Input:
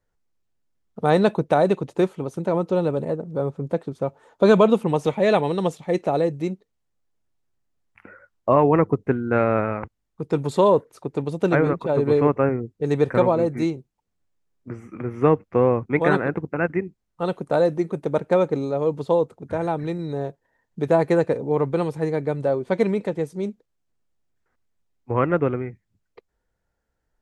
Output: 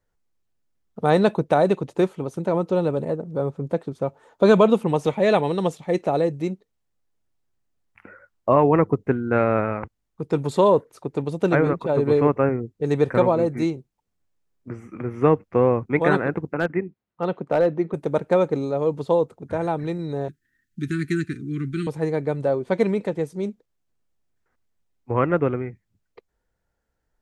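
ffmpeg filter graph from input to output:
ffmpeg -i in.wav -filter_complex "[0:a]asettb=1/sr,asplit=3[link_01][link_02][link_03];[link_01]atrim=end=16.544[link_04];[link_02]atrim=start=16.54:end=17.94,asetpts=PTS-STARTPTS,afade=type=in:duration=0.004:curve=qsin,afade=type=out:start_time=1.396:duration=0.004:curve=qsin,highpass=110,lowpass=3000,asoftclip=type=hard:threshold=-12dB[link_05];[link_03]atrim=start=17.936[link_06];[link_04][link_05]acrossfade=duration=0.004:curve1=hsin:curve2=qsin[link_07];[link_07][link_06]acrossfade=duration=0.004:curve1=qsin:curve2=hsin,asettb=1/sr,asplit=3[link_08][link_09][link_10];[link_08]atrim=end=20.284[link_11];[link_09]atrim=start=20.28:end=21.87,asetpts=PTS-STARTPTS,afade=type=in:duration=0.004:curve=qsin,afade=type=out:start_time=1.586:duration=0.004:curve=qsin,asuperstop=centerf=690:order=12:qfactor=0.68,highshelf=frequency=6200:gain=5.5[link_12];[link_10]atrim=start=21.866[link_13];[link_11][link_12]acrossfade=duration=0.004:curve1=hsin:curve2=qsin[link_14];[link_14][link_13]acrossfade=duration=0.004:curve1=qsin:curve2=hsin" out.wav

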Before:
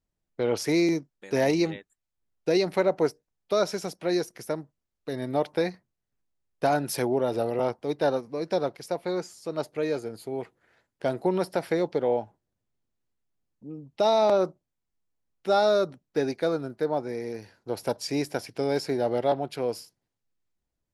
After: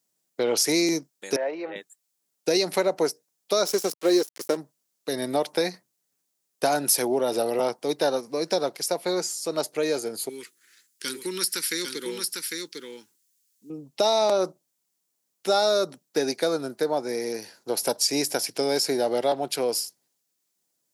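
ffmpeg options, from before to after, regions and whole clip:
ffmpeg -i in.wav -filter_complex "[0:a]asettb=1/sr,asplit=3[link_01][link_02][link_03];[link_01]atrim=end=1.364[link_04];[link_02]atrim=start=1.36:end=1.76,asetpts=PTS-STARTPTS,afade=type=in:duration=0.004:curve=qsin,afade=type=out:start_time=0.396:duration=0.004:curve=qsin,acompressor=threshold=-29dB:ratio=5:attack=3.2:release=140:knee=1:detection=peak,highpass=480,equalizer=frequency=570:width_type=q:width=4:gain=8,equalizer=frequency=1500:width_type=q:width=4:gain=4,equalizer=frequency=2100:width_type=q:width=4:gain=-4,lowpass=frequency=2300:width=0.5412,lowpass=frequency=2300:width=1.3066[link_05];[link_03]atrim=start=1.756[link_06];[link_04][link_05]acrossfade=duration=0.004:curve1=hsin:curve2=qsin[link_07];[link_07][link_06]acrossfade=duration=0.004:curve1=qsin:curve2=hsin,asettb=1/sr,asplit=3[link_08][link_09][link_10];[link_08]atrim=end=3.654[link_11];[link_09]atrim=start=3.65:end=4.57,asetpts=PTS-STARTPTS,afade=type=in:duration=0.004:curve=qsin,afade=type=out:start_time=0.916:duration=0.004:curve=qsin,equalizer=frequency=390:width=3:gain=13.5,aecho=1:1:3.8:0.35,atrim=end_sample=40572,aeval=exprs='sgn(val(0))*max(abs(val(0))-0.0106,0)':channel_layout=same[link_12];[link_10]atrim=start=4.566[link_13];[link_11][link_12]acrossfade=duration=0.004:curve1=hsin:curve2=qsin[link_14];[link_14][link_13]acrossfade=duration=0.004:curve1=qsin:curve2=hsin,asettb=1/sr,asplit=3[link_15][link_16][link_17];[link_15]atrim=end=10.294[link_18];[link_16]atrim=start=10.29:end=13.7,asetpts=PTS-STARTPTS,afade=type=in:duration=0.004:curve=qsin,afade=type=out:start_time=3.406:duration=0.004:curve=qsin,asuperstop=centerf=680:order=4:qfactor=0.56,bass=frequency=250:gain=-15,treble=frequency=4000:gain=6,aecho=1:1:801:0.596,atrim=end_sample=150381[link_19];[link_17]atrim=start=13.696[link_20];[link_18][link_19]acrossfade=duration=0.004:curve1=hsin:curve2=qsin[link_21];[link_21][link_20]acrossfade=duration=0.004:curve1=qsin:curve2=hsin,highpass=frequency=140:width=0.5412,highpass=frequency=140:width=1.3066,bass=frequency=250:gain=-6,treble=frequency=4000:gain=14,acompressor=threshold=-27dB:ratio=2,volume=5dB" out.wav

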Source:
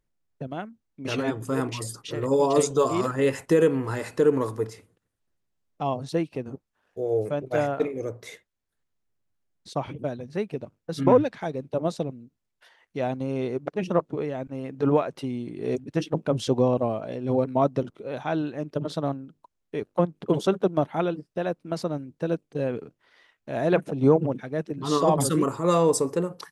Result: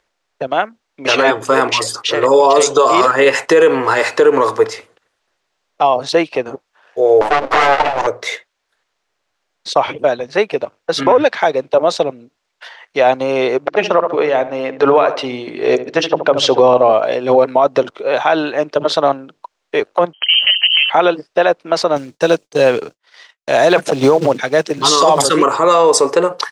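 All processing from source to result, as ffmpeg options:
ffmpeg -i in.wav -filter_complex "[0:a]asettb=1/sr,asplit=3[link_01][link_02][link_03];[link_01]atrim=end=7.214[link_04];[link_02]atrim=start=7.21:end=8.07,asetpts=PTS-STARTPTS,afade=type=in:duration=0.004:curve=qsin,afade=type=out:start_time=0.856:duration=0.004:curve=qsin,equalizer=frequency=160:width_type=o:width=0.62:gain=13.5,bandreject=frequency=50:width_type=h:width=6,bandreject=frequency=100:width_type=h:width=6,bandreject=frequency=150:width_type=h:width=6,bandreject=frequency=200:width_type=h:width=6,bandreject=frequency=250:width_type=h:width=6,bandreject=frequency=300:width_type=h:width=6,bandreject=frequency=350:width_type=h:width=6,aeval=exprs='abs(val(0))':channel_layout=same[link_05];[link_03]atrim=start=8.066[link_06];[link_04][link_05]acrossfade=duration=0.004:curve1=hsin:curve2=qsin[link_07];[link_07][link_06]acrossfade=duration=0.004:curve1=qsin:curve2=hsin,asettb=1/sr,asplit=3[link_08][link_09][link_10];[link_08]atrim=end=13.654[link_11];[link_09]atrim=start=13.65:end=16.93,asetpts=PTS-STARTPTS,afade=type=in:duration=0.004:curve=qsin,afade=type=out:start_time=3.276:duration=0.004:curve=qsin,lowpass=6700,bandreject=frequency=47.74:width_type=h:width=4,bandreject=frequency=95.48:width_type=h:width=4,bandreject=frequency=143.22:width_type=h:width=4,bandreject=frequency=190.96:width_type=h:width=4,bandreject=frequency=238.7:width_type=h:width=4,bandreject=frequency=286.44:width_type=h:width=4,bandreject=frequency=334.18:width_type=h:width=4,asplit=2[link_12][link_13];[link_13]adelay=72,lowpass=frequency=2100:poles=1,volume=-13dB,asplit=2[link_14][link_15];[link_15]adelay=72,lowpass=frequency=2100:poles=1,volume=0.38,asplit=2[link_16][link_17];[link_17]adelay=72,lowpass=frequency=2100:poles=1,volume=0.38,asplit=2[link_18][link_19];[link_19]adelay=72,lowpass=frequency=2100:poles=1,volume=0.38[link_20];[link_12][link_14][link_16][link_18][link_20]amix=inputs=5:normalize=0,atrim=end_sample=144648[link_21];[link_10]atrim=start=16.926[link_22];[link_11][link_21]acrossfade=duration=0.004:curve1=hsin:curve2=qsin[link_23];[link_23][link_22]acrossfade=duration=0.004:curve1=qsin:curve2=hsin,asettb=1/sr,asplit=3[link_24][link_25][link_26];[link_24]atrim=end=20.134[link_27];[link_25]atrim=start=20.13:end=20.9,asetpts=PTS-STARTPTS,afade=type=in:duration=0.004:curve=qsin,afade=type=out:start_time=0.766:duration=0.004:curve=qsin,bandreject=frequency=60:width_type=h:width=6,bandreject=frequency=120:width_type=h:width=6,bandreject=frequency=180:width_type=h:width=6,bandreject=frequency=240:width_type=h:width=6,bandreject=frequency=300:width_type=h:width=6,bandreject=frequency=360:width_type=h:width=6,bandreject=frequency=420:width_type=h:width=6,bandreject=frequency=480:width_type=h:width=6,bandreject=frequency=540:width_type=h:width=6,bandreject=frequency=600:width_type=h:width=6,acompressor=threshold=-27dB:ratio=6:attack=3.2:release=140:knee=1:detection=peak,lowpass=frequency=2800:width_type=q:width=0.5098,lowpass=frequency=2800:width_type=q:width=0.6013,lowpass=frequency=2800:width_type=q:width=0.9,lowpass=frequency=2800:width_type=q:width=2.563,afreqshift=-3300[link_28];[link_26]atrim=start=20.896[link_29];[link_27][link_28]acrossfade=duration=0.004:curve1=hsin:curve2=qsin[link_30];[link_30][link_29]acrossfade=duration=0.004:curve1=qsin:curve2=hsin,asettb=1/sr,asplit=3[link_31][link_32][link_33];[link_31]atrim=end=21.964[link_34];[link_32]atrim=start=21.96:end=25.22,asetpts=PTS-STARTPTS,afade=type=in:duration=0.004:curve=qsin,afade=type=out:start_time=3.256:duration=0.004:curve=qsin,agate=range=-33dB:threshold=-53dB:ratio=3:release=100:detection=peak,bass=frequency=250:gain=6,treble=frequency=4000:gain=14,acrusher=bits=8:mode=log:mix=0:aa=0.000001[link_35];[link_33]atrim=start=25.216[link_36];[link_34][link_35]acrossfade=duration=0.004:curve1=hsin:curve2=qsin[link_37];[link_37][link_36]acrossfade=duration=0.004:curve1=qsin:curve2=hsin,acrossover=split=460 6700:gain=0.0708 1 0.1[link_38][link_39][link_40];[link_38][link_39][link_40]amix=inputs=3:normalize=0,alimiter=level_in=22.5dB:limit=-1dB:release=50:level=0:latency=1,volume=-1dB" out.wav

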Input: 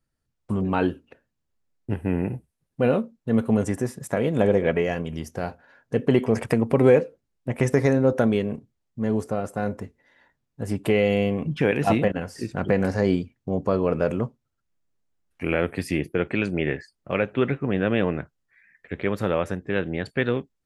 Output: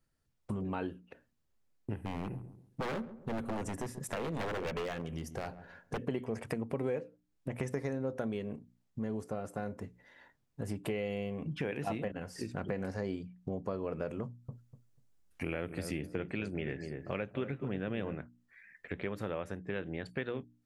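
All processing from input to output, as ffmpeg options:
ffmpeg -i in.wav -filter_complex "[0:a]asettb=1/sr,asplit=3[link_01][link_02][link_03];[link_01]atrim=end=2.044[link_04];[link_02]atrim=start=2.04:end=6.06,asetpts=PTS-STARTPTS,afade=type=in:duration=0.004:curve=qsin,afade=type=out:start_time=4.016:duration=0.004:curve=qsin,aeval=exprs='0.1*(abs(mod(val(0)/0.1+3,4)-2)-1)':channel_layout=same,asplit=2[link_05][link_06];[link_06]adelay=136,lowpass=frequency=800:poles=1,volume=-16dB,asplit=2[link_07][link_08];[link_08]adelay=136,lowpass=frequency=800:poles=1,volume=0.29,asplit=2[link_09][link_10];[link_10]adelay=136,lowpass=frequency=800:poles=1,volume=0.29[link_11];[link_05][link_07][link_09][link_11]amix=inputs=4:normalize=0,atrim=end_sample=177282[link_12];[link_03]atrim=start=6.056[link_13];[link_04][link_12]acrossfade=duration=0.004:curve1=hsin:curve2=qsin[link_14];[link_14][link_13]acrossfade=duration=0.004:curve1=qsin:curve2=hsin,asettb=1/sr,asplit=3[link_15][link_16][link_17];[link_15]atrim=end=14.244[link_18];[link_16]atrim=start=14.24:end=18.15,asetpts=PTS-STARTPTS,afade=type=in:duration=0.004:curve=qsin,afade=type=out:start_time=3.906:duration=0.004:curve=qsin,bass=frequency=250:gain=3,treble=frequency=4000:gain=5,asplit=2[link_19][link_20];[link_20]adelay=245,lowpass=frequency=940:poles=1,volume=-9dB,asplit=2[link_21][link_22];[link_22]adelay=245,lowpass=frequency=940:poles=1,volume=0.18,asplit=2[link_23][link_24];[link_24]adelay=245,lowpass=frequency=940:poles=1,volume=0.18[link_25];[link_19][link_21][link_23][link_25]amix=inputs=4:normalize=0,atrim=end_sample=172431[link_26];[link_17]atrim=start=18.146[link_27];[link_18][link_26]acrossfade=duration=0.004:curve1=hsin:curve2=qsin[link_28];[link_28][link_27]acrossfade=duration=0.004:curve1=qsin:curve2=hsin,bandreject=frequency=60:width_type=h:width=6,bandreject=frequency=120:width_type=h:width=6,bandreject=frequency=180:width_type=h:width=6,bandreject=frequency=240:width_type=h:width=6,bandreject=frequency=300:width_type=h:width=6,acompressor=threshold=-38dB:ratio=3" out.wav

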